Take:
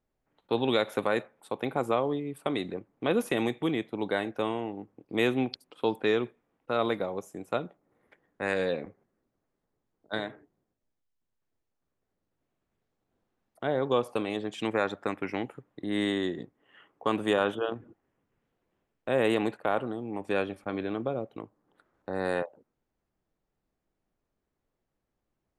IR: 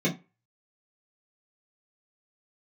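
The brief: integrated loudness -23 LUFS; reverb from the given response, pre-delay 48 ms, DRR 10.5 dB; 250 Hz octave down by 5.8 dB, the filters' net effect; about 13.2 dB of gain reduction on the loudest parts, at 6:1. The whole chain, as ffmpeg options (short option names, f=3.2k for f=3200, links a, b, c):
-filter_complex "[0:a]equalizer=f=250:t=o:g=-8,acompressor=threshold=-37dB:ratio=6,asplit=2[a][b];[1:a]atrim=start_sample=2205,adelay=48[c];[b][c]afir=irnorm=-1:irlink=0,volume=-21.5dB[d];[a][d]amix=inputs=2:normalize=0,volume=19dB"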